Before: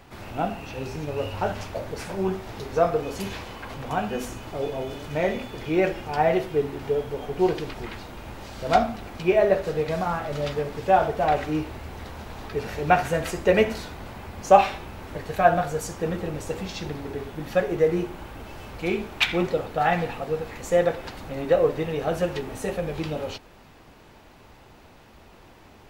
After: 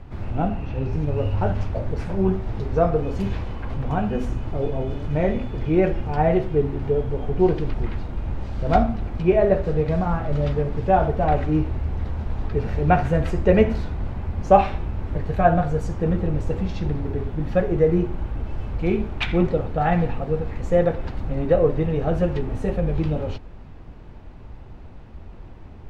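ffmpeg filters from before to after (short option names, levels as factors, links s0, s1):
-filter_complex "[0:a]asettb=1/sr,asplit=3[s0][s1][s2];[s0]atrim=end=0.484[s3];[s1]atrim=start=0.48:end=0.93,asetpts=PTS-STARTPTS,afade=t=in:d=0.004:c=qsin,afade=t=out:st=0.446:d=0.004:c=qsin,acrossover=split=4600[s4][s5];[s5]acompressor=threshold=0.00141:ratio=4:attack=1:release=60[s6];[s4][s6]amix=inputs=2:normalize=0[s7];[s2]atrim=start=0.926[s8];[s3][s7]acrossfade=d=0.004:c1=hsin:c2=qsin[s9];[s9][s8]acrossfade=d=0.004:c1=qsin:c2=hsin,aemphasis=mode=reproduction:type=riaa,volume=0.891"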